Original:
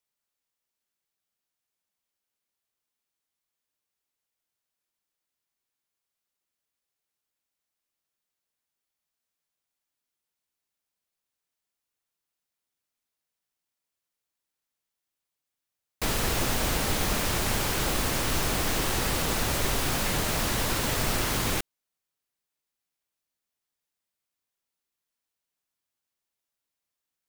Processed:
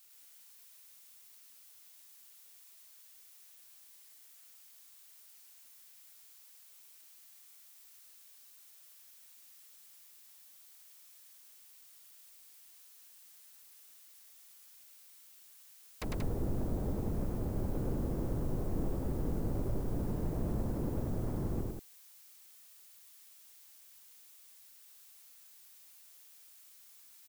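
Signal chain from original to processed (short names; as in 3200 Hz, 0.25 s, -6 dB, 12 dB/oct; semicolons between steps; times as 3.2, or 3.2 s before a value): treble ducked by the level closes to 400 Hz, closed at -26 dBFS; limiter -26.5 dBFS, peak gain reduction 9 dB; added noise blue -58 dBFS; loudspeakers at several distances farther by 35 m -2 dB, 63 m -5 dB; gain -3 dB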